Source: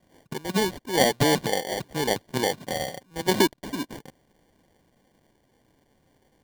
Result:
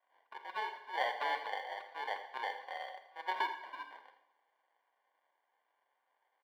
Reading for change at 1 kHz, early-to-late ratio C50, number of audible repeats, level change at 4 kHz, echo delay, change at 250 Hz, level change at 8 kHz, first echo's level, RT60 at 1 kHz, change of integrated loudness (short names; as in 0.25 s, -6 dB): -7.5 dB, 8.5 dB, 1, -17.0 dB, 82 ms, -35.0 dB, under -35 dB, -13.0 dB, 0.85 s, -14.0 dB